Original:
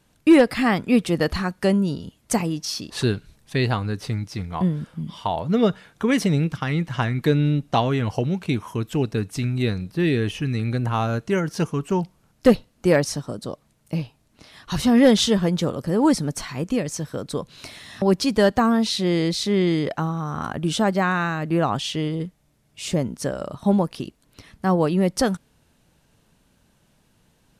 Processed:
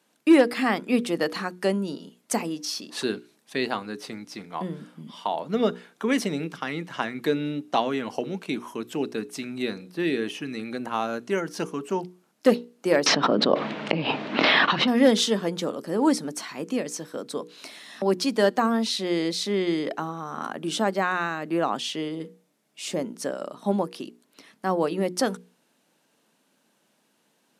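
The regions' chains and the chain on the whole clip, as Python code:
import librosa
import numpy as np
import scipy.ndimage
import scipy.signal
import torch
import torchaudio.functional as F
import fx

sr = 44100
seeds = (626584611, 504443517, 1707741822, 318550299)

y = fx.chain(x, sr, fx.lowpass(hz=3300.0, slope=24),
    fx.env_flatten(amount_pct=100), at=(13.06, 14.88))
y = scipy.signal.sosfilt(scipy.signal.butter(4, 220.0, 'highpass', fs=sr, output='sos'), y)
y = fx.hum_notches(y, sr, base_hz=60, count=8)
y = y * librosa.db_to_amplitude(-2.5)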